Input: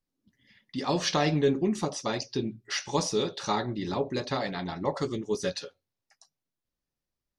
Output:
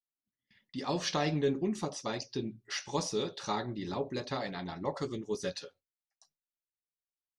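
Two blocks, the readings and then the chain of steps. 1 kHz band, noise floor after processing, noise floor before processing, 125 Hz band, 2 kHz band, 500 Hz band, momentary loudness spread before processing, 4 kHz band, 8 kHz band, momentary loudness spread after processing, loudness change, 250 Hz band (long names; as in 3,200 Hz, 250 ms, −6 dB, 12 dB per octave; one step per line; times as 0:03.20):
−5.5 dB, below −85 dBFS, below −85 dBFS, −5.5 dB, −5.5 dB, −5.5 dB, 8 LU, −5.5 dB, −5.5 dB, 8 LU, −5.5 dB, −5.5 dB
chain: noise gate with hold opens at −50 dBFS
level −5.5 dB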